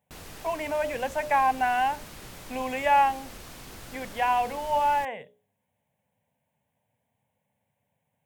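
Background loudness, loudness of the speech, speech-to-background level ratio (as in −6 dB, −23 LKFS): −43.5 LKFS, −26.0 LKFS, 17.5 dB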